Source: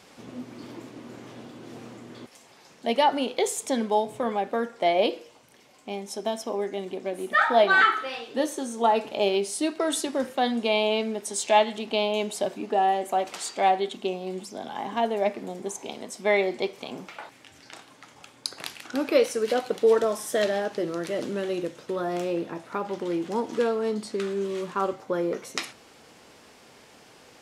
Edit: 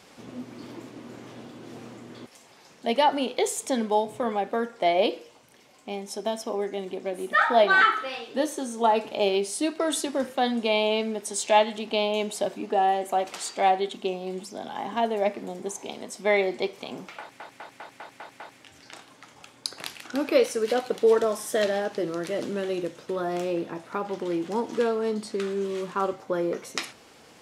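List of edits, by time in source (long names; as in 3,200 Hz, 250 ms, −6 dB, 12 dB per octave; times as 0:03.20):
0:17.20: stutter 0.20 s, 7 plays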